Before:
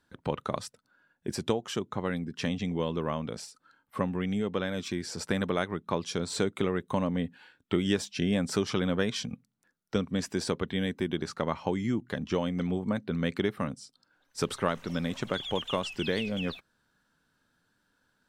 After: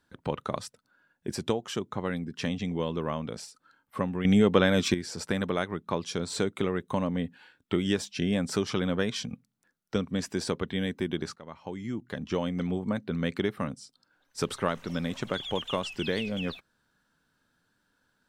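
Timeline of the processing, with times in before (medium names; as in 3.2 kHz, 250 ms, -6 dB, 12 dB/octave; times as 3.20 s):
4.25–4.94 s: gain +9.5 dB
11.36–12.43 s: fade in, from -20 dB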